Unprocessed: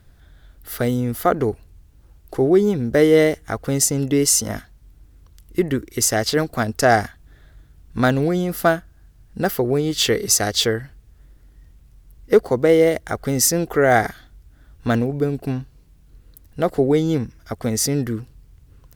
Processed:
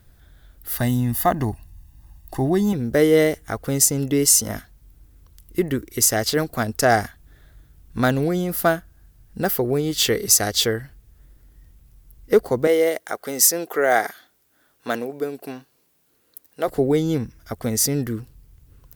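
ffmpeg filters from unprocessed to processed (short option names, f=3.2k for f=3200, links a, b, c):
-filter_complex "[0:a]asettb=1/sr,asplit=3[a][b][c];[a]atrim=end=0.764[d];[b]atrim=start=0.76:end=2.73,asetpts=PTS-STARTPTS,afade=t=in:d=0.004:c=qsin,afade=t=out:st=1.966:d=0.004:c=qsin,aecho=1:1:1.1:0.83,atrim=end_sample=86877[e];[c]atrim=start=2.726[f];[d][e]acrossfade=d=0.004:c1=hsin:c2=qsin[g];[g][f]acrossfade=d=0.004:c1=qsin:c2=hsin,asettb=1/sr,asplit=3[h][i][j];[h]atrim=end=12.674[k];[i]atrim=start=12.67:end=16.68,asetpts=PTS-STARTPTS,afade=t=in:d=0.004:c=qsin,afade=t=out:st=4.006:d=0.004:c=qsin,highpass=380[l];[j]atrim=start=16.676[m];[k][l]acrossfade=d=0.004:c1=hsin:c2=qsin[n];[n][m]acrossfade=d=0.004:c1=qsin:c2=hsin,highshelf=f=11k:g=12,volume=-2dB"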